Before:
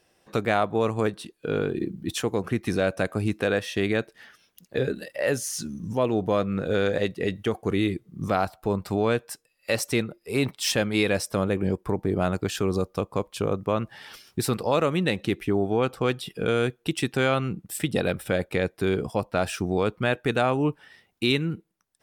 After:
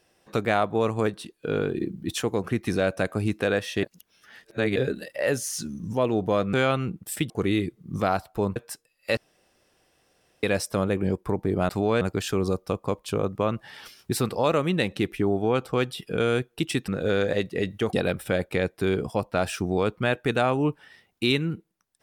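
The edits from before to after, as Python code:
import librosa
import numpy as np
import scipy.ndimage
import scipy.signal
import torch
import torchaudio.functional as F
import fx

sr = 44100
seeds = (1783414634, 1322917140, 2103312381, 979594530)

y = fx.edit(x, sr, fx.reverse_span(start_s=3.83, length_s=0.93),
    fx.swap(start_s=6.53, length_s=1.05, other_s=17.16, other_length_s=0.77),
    fx.move(start_s=8.84, length_s=0.32, to_s=12.29),
    fx.room_tone_fill(start_s=9.77, length_s=1.26), tone=tone)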